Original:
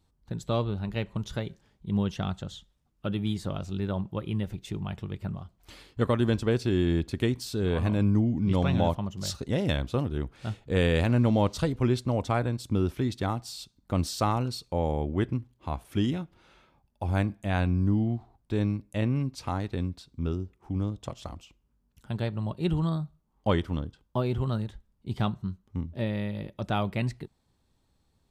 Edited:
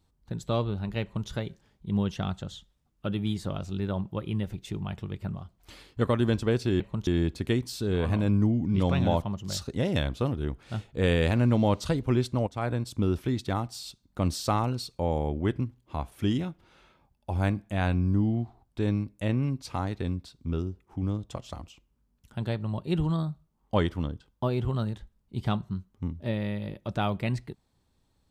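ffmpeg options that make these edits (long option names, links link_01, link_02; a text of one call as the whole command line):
ffmpeg -i in.wav -filter_complex "[0:a]asplit=4[link_01][link_02][link_03][link_04];[link_01]atrim=end=6.802[link_05];[link_02]atrim=start=1.018:end=1.292[link_06];[link_03]atrim=start=6.798:end=12.2,asetpts=PTS-STARTPTS,afade=type=out:start_time=5.398:duration=0.004:curve=hsin:silence=0.149624[link_07];[link_04]atrim=start=12.2,asetpts=PTS-STARTPTS,afade=type=in:duration=0.27:silence=0.149624[link_08];[link_05][link_06]acrossfade=duration=0.004:curve1=hsin:curve2=hsin[link_09];[link_07][link_08]concat=n=2:v=0:a=1[link_10];[link_09][link_10]acrossfade=duration=0.004:curve1=hsin:curve2=hsin" out.wav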